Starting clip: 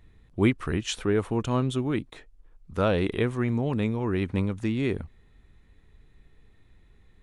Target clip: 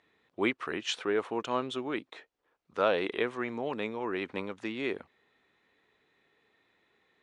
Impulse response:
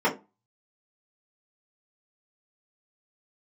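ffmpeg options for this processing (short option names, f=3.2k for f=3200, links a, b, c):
-af "highpass=450,lowpass=5k"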